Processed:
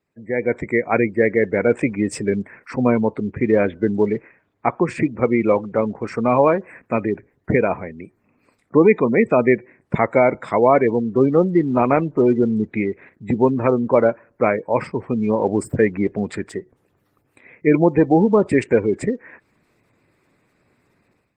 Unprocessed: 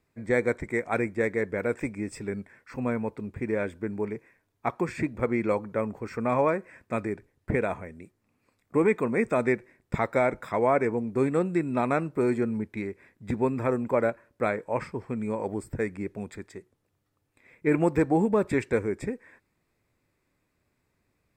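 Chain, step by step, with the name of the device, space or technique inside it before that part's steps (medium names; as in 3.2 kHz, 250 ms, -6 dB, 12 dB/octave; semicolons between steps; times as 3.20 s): 3.46–4.68 s: steep low-pass 4.8 kHz 36 dB/octave; dynamic bell 1.5 kHz, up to -3 dB, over -44 dBFS, Q 2.5; noise-suppressed video call (high-pass 110 Hz 12 dB/octave; spectral gate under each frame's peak -25 dB strong; level rider gain up to 16 dB; trim -1 dB; Opus 20 kbps 48 kHz)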